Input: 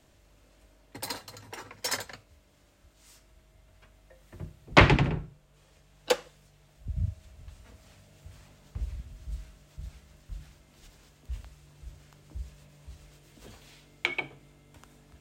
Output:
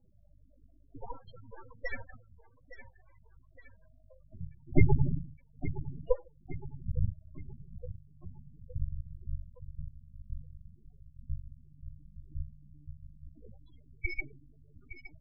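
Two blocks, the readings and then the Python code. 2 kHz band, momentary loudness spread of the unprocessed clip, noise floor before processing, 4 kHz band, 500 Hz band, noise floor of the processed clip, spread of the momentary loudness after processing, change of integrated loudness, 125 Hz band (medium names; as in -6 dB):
-12.5 dB, 25 LU, -62 dBFS, under -25 dB, -6.0 dB, -61 dBFS, 21 LU, -8.5 dB, -1.5 dB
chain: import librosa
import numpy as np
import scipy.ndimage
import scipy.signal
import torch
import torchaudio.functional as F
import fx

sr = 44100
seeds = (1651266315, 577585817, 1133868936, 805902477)

y = fx.sample_hold(x, sr, seeds[0], rate_hz=7400.0, jitter_pct=0)
y = fx.echo_feedback(y, sr, ms=865, feedback_pct=52, wet_db=-13)
y = np.maximum(y, 0.0)
y = fx.spec_topn(y, sr, count=8)
y = y * librosa.db_to_amplitude(4.5)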